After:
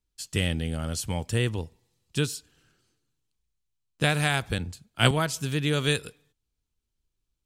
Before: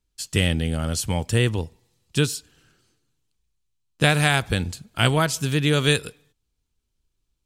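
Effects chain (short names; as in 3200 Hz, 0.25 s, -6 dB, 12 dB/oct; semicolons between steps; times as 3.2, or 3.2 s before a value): 4.58–5.11 three-band expander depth 70%; gain -5.5 dB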